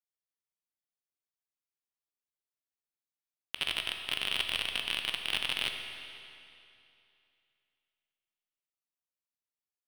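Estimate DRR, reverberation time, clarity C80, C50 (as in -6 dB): 4.5 dB, 2.7 s, 6.5 dB, 5.5 dB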